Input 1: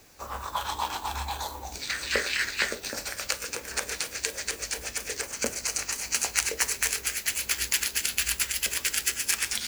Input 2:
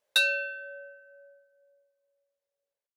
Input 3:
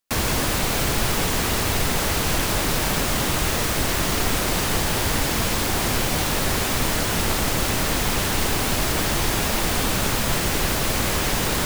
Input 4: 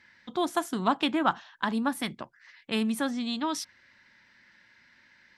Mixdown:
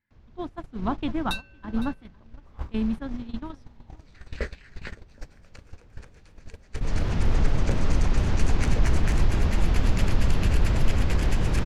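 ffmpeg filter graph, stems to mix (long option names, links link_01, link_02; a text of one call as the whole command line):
ffmpeg -i stem1.wav -i stem2.wav -i stem3.wav -i stem4.wav -filter_complex "[0:a]adelay=2250,volume=-5dB[link_01];[1:a]highpass=frequency=1100:poles=1,aemphasis=mode=production:type=75fm,adelay=1150,volume=-7.5dB,asplit=2[link_02][link_03];[link_03]volume=-16.5dB[link_04];[2:a]lowpass=frequency=6300:width=0.5412,lowpass=frequency=6300:width=1.3066,alimiter=limit=-19dB:level=0:latency=1:release=149,volume=-5.5dB,afade=type=in:start_time=6.69:duration=0.35:silence=0.237137,asplit=2[link_05][link_06];[link_06]volume=-6.5dB[link_07];[3:a]volume=-5.5dB,asplit=3[link_08][link_09][link_10];[link_09]volume=-14dB[link_11];[link_10]apad=whole_len=526044[link_12];[link_01][link_12]sidechaincompress=threshold=-52dB:ratio=10:attack=33:release=272[link_13];[link_04][link_07][link_11]amix=inputs=3:normalize=0,aecho=0:1:509:1[link_14];[link_13][link_02][link_05][link_08][link_14]amix=inputs=5:normalize=0,aemphasis=mode=reproduction:type=riaa,agate=range=-19dB:threshold=-26dB:ratio=16:detection=peak" out.wav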